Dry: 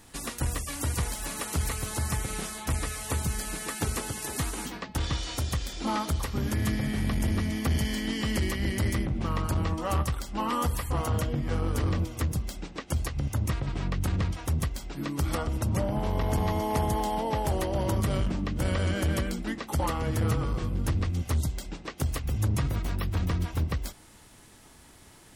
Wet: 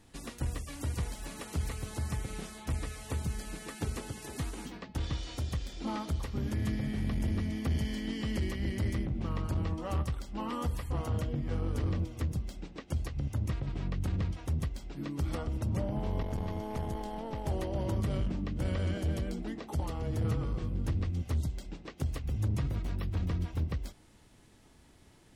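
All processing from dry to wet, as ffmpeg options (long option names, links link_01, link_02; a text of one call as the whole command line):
ffmpeg -i in.wav -filter_complex "[0:a]asettb=1/sr,asplit=3[link_01][link_02][link_03];[link_01]atrim=end=16.234[link_04];[link_02]atrim=start=16.23:end=17.46,asetpts=PTS-STARTPTS,afade=type=in:duration=0.004:curve=qsin,afade=type=out:start_time=1.226:duration=0.004:curve=qsin,aeval=exprs='sgn(val(0))*max(abs(val(0))-0.00178,0)':channel_layout=same,aeval=exprs='(tanh(10*val(0)+0.65)-tanh(0.65))/10':channel_layout=same[link_05];[link_03]atrim=start=17.456[link_06];[link_04][link_05]acrossfade=duration=0.004:curve1=hsin:curve2=qsin[link_07];[link_07][link_06]acrossfade=duration=0.004:curve1=qsin:curve2=hsin,asettb=1/sr,asplit=3[link_08][link_09][link_10];[link_08]atrim=end=18.974[link_11];[link_09]atrim=start=18.97:end=20.25,asetpts=PTS-STARTPTS,afade=type=in:duration=0.004:curve=qsin,afade=type=out:start_time=1.276:duration=0.004:curve=qsin,equalizer=frequency=560:width=0.91:gain=9,bandreject=frequency=540:width=6.7,acrossover=split=180|3000[link_12][link_13][link_14];[link_13]acompressor=threshold=-31dB:ratio=6:attack=3.2:release=140:knee=2.83:detection=peak[link_15];[link_12][link_15][link_14]amix=inputs=3:normalize=0[link_16];[link_10]atrim=start=20.246[link_17];[link_11][link_16]acrossfade=duration=0.004:curve1=hsin:curve2=qsin[link_18];[link_18][link_17]acrossfade=duration=0.004:curve1=qsin:curve2=hsin,lowpass=frequency=3100:poles=1,equalizer=frequency=1200:width_type=o:width=1.9:gain=-5.5,volume=-4dB" out.wav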